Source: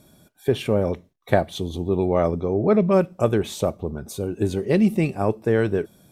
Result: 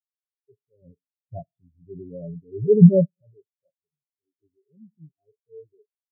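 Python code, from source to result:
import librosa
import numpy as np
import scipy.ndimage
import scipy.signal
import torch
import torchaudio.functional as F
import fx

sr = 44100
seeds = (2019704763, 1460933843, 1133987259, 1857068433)

y = fx.low_shelf(x, sr, hz=380.0, db=11.5, at=(0.82, 3.22))
y = fx.rev_schroeder(y, sr, rt60_s=0.77, comb_ms=26, drr_db=15.5)
y = fx.transient(y, sr, attack_db=-7, sustain_db=3)
y = y + 0.45 * np.pad(y, (int(7.2 * sr / 1000.0), 0))[:len(y)]
y = fx.spectral_expand(y, sr, expansion=4.0)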